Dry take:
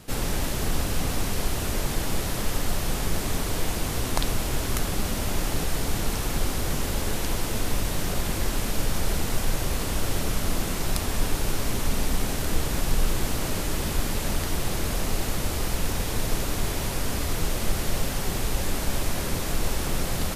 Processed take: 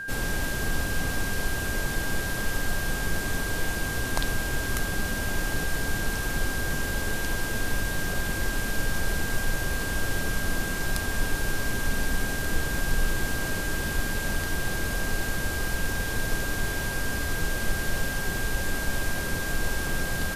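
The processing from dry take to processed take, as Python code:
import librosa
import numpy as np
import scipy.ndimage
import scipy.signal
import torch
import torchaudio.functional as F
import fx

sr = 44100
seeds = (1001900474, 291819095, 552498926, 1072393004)

y = x + 10.0 ** (-30.0 / 20.0) * np.sin(2.0 * np.pi * 1600.0 * np.arange(len(x)) / sr)
y = F.gain(torch.from_numpy(y), -2.5).numpy()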